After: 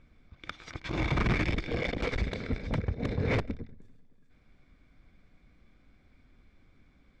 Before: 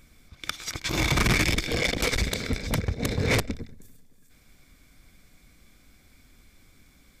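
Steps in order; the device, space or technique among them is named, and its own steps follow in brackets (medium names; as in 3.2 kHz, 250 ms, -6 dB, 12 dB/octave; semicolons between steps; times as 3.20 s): phone in a pocket (low-pass 3.7 kHz 12 dB/octave; treble shelf 2.3 kHz -9 dB); trim -3.5 dB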